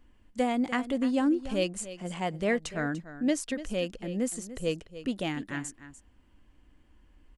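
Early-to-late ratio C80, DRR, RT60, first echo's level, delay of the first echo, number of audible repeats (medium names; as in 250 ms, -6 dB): no reverb, no reverb, no reverb, -14.0 dB, 294 ms, 1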